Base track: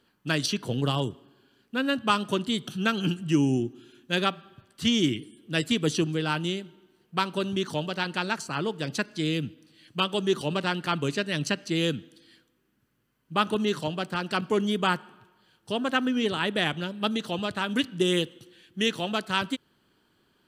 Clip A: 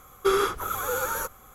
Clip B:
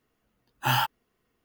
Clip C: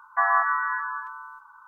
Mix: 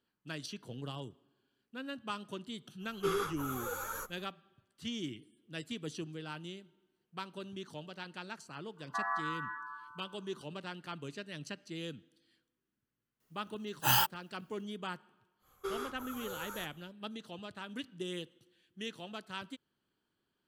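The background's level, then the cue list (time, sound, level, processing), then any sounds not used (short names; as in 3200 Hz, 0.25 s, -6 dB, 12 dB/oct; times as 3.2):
base track -16 dB
2.78 add A -8 dB, fades 0.10 s + ensemble effect
8.77 add C -14 dB
13.2 add B -5.5 dB + tone controls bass -2 dB, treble +11 dB
15.39 add A -16.5 dB, fades 0.10 s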